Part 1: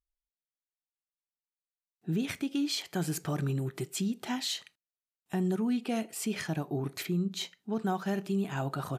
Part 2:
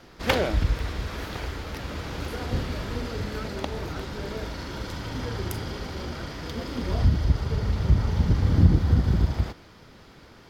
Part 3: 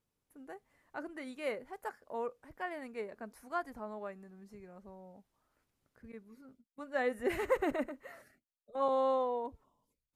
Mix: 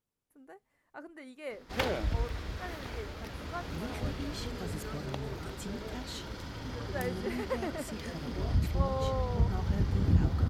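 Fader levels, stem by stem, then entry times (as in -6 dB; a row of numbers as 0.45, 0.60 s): -10.5, -8.0, -4.0 dB; 1.65, 1.50, 0.00 s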